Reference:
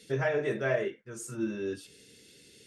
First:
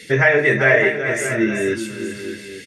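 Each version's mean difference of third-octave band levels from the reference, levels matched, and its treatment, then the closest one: 5.5 dB: bell 2000 Hz +14 dB 0.58 oct; in parallel at -3 dB: limiter -21 dBFS, peak gain reduction 8 dB; on the sum: tapped delay 0.384/0.607/0.861 s -9.5/-10.5/-15 dB; gain +8 dB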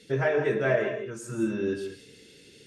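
3.0 dB: LPF 3900 Hz 6 dB/oct; in parallel at +1 dB: vocal rider 2 s; on the sum: non-linear reverb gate 0.22 s rising, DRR 7 dB; gain -2.5 dB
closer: second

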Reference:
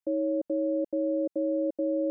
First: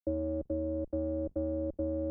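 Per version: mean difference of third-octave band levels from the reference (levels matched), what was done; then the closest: 7.0 dB: octaver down 2 oct, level -1 dB; gate with hold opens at -41 dBFS; transient shaper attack +5 dB, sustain -2 dB; gain -7 dB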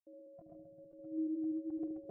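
5.0 dB: reverse delay 0.131 s, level -4 dB; spectral noise reduction 24 dB; on a send: dark delay 73 ms, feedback 60%, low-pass 430 Hz, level -3.5 dB; on the sum: gain -4 dB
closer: second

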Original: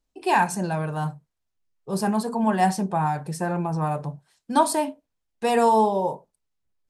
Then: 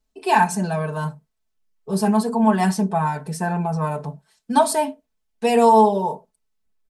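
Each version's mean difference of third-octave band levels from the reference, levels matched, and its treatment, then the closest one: 2.0 dB: comb 4.6 ms, depth 94%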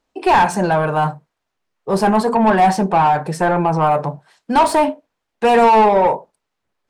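4.0 dB: overdrive pedal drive 22 dB, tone 1300 Hz, clips at -6 dBFS; gain +3 dB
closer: first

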